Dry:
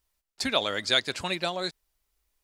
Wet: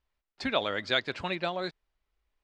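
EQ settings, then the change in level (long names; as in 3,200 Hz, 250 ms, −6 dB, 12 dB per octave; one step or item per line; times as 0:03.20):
low-pass filter 2,900 Hz 12 dB per octave
−1.0 dB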